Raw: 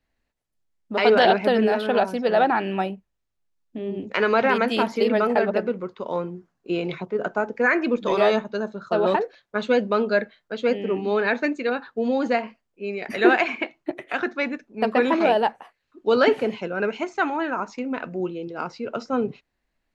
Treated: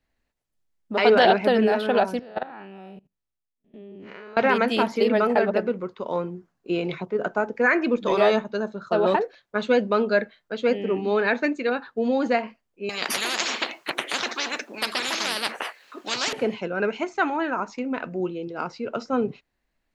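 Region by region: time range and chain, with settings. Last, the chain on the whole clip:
0:02.19–0:04.37: spectrum smeared in time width 129 ms + output level in coarse steps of 21 dB + dynamic equaliser 1,300 Hz, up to +3 dB, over −43 dBFS, Q 0.77
0:12.89–0:16.33: high-pass filter 500 Hz + every bin compressed towards the loudest bin 10 to 1
whole clip: no processing

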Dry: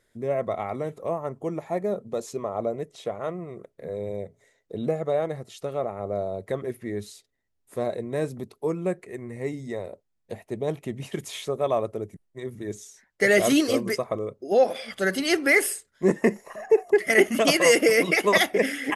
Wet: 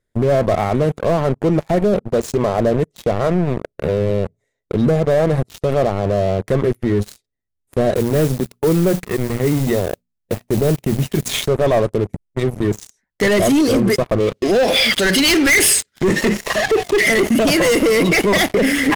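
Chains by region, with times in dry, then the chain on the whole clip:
0:07.95–0:11.40: mains-hum notches 60/120/180/240 Hz + noise that follows the level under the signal 14 dB
0:14.20–0:17.10: mu-law and A-law mismatch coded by mu + meter weighting curve D
whole clip: leveller curve on the samples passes 5; low-shelf EQ 280 Hz +11 dB; brickwall limiter −6.5 dBFS; level −2 dB

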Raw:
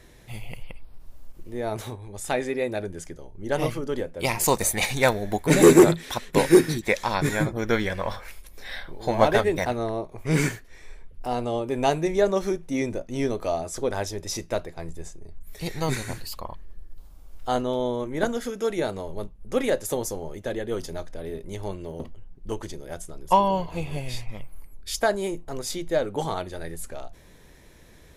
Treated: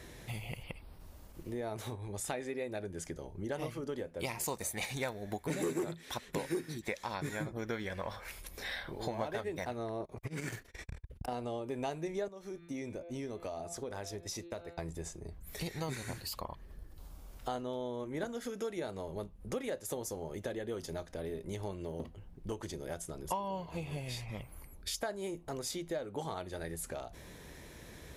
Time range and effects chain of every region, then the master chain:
0:10.00–0:11.32: compressor whose output falls as the input rises −28 dBFS + saturating transformer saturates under 350 Hz
0:12.28–0:14.78: downward expander −30 dBFS + hum removal 170.9 Hz, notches 25 + downward compressor 2.5 to 1, threshold −40 dBFS
whole clip: high-pass filter 43 Hz; downward compressor 4 to 1, threshold −40 dBFS; level +2 dB

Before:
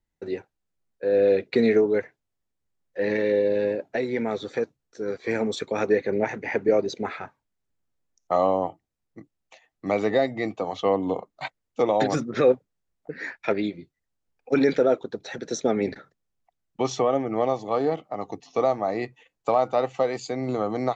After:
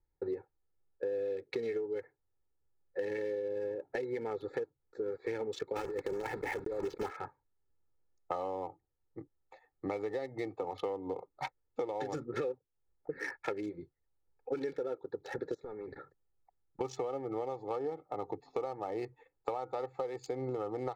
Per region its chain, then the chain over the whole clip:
0:05.76–0:07.11: one scale factor per block 3 bits + low-pass filter 2,800 Hz 6 dB per octave + compressor whose output falls as the input rises −27 dBFS
0:15.54–0:16.81: hard clipping −18.5 dBFS + downward compressor 10 to 1, threshold −39 dBFS
whole clip: adaptive Wiener filter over 15 samples; comb filter 2.3 ms, depth 69%; downward compressor 12 to 1, threshold −31 dBFS; level −2 dB

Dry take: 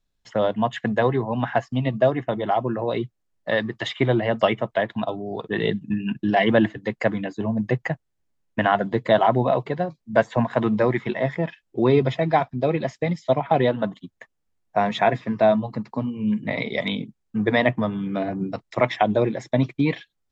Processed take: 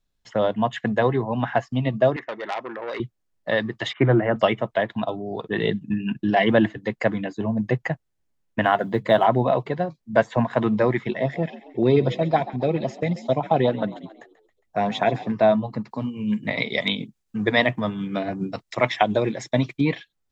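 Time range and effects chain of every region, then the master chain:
0:02.16–0:03.00: loudspeaker in its box 460–6,000 Hz, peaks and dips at 720 Hz −9 dB, 1,900 Hz +9 dB, 3,100 Hz −8 dB + saturating transformer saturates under 2,100 Hz
0:03.93–0:04.36: loudspeaker in its box 130–2,200 Hz, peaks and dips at 130 Hz +8 dB, 320 Hz +5 dB, 1,400 Hz +7 dB + highs frequency-modulated by the lows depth 0.1 ms
0:08.64–0:09.25: mains-hum notches 50/100/150/200 Hz + floating-point word with a short mantissa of 6 bits
0:11.03–0:15.32: echo with shifted repeats 136 ms, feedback 51%, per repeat +57 Hz, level −17 dB + auto-filter notch saw up 7.5 Hz 820–2,400 Hz
0:15.91–0:19.81: high-shelf EQ 2,200 Hz +8.5 dB + amplitude tremolo 7.1 Hz, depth 36%
whole clip: no processing

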